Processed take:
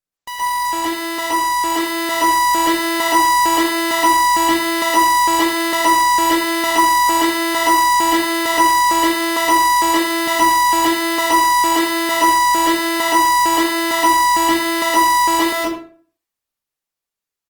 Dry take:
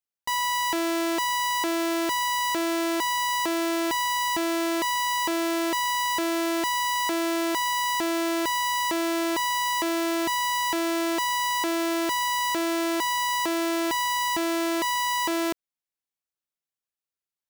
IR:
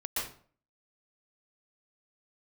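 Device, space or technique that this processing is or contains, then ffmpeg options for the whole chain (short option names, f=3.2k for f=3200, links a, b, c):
speakerphone in a meeting room: -filter_complex "[1:a]atrim=start_sample=2205[a];[0:a][a]afir=irnorm=-1:irlink=0,asplit=2[b][c];[c]adelay=80,highpass=300,lowpass=3.4k,asoftclip=type=hard:threshold=-17.5dB,volume=-10dB[d];[b][d]amix=inputs=2:normalize=0,dynaudnorm=f=800:g=5:m=7dB,volume=2dB" -ar 48000 -c:a libopus -b:a 24k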